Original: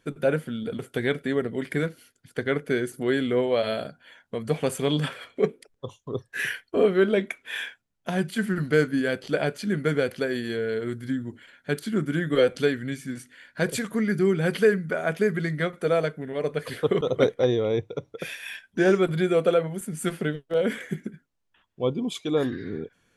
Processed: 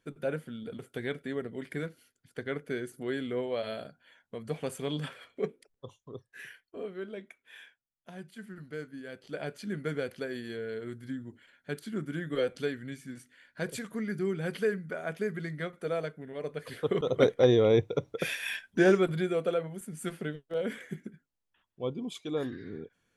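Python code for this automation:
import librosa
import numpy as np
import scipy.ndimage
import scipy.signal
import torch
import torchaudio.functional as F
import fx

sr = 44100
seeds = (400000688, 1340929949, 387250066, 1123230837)

y = fx.gain(x, sr, db=fx.line((5.94, -9.5), (6.49, -19.0), (9.01, -19.0), (9.56, -9.5), (16.6, -9.5), (17.63, 2.0), (18.54, 2.0), (19.38, -8.5)))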